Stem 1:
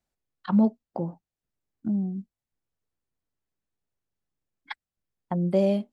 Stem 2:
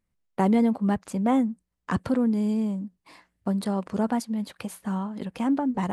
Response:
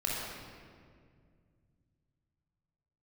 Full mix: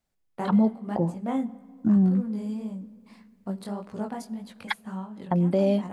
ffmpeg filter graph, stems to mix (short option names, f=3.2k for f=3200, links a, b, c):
-filter_complex "[0:a]dynaudnorm=f=270:g=9:m=8.5dB,alimiter=limit=-16dB:level=0:latency=1,volume=2dB,asplit=2[a][b];[1:a]flanger=delay=16:depth=6.8:speed=1.8,volume=-4.5dB,asplit=2[c][d];[d]volume=-23dB[e];[b]apad=whole_len=261508[f];[c][f]sidechaincompress=threshold=-30dB:ratio=5:attack=24:release=229[g];[2:a]atrim=start_sample=2205[h];[e][h]afir=irnorm=-1:irlink=0[i];[a][g][i]amix=inputs=3:normalize=0"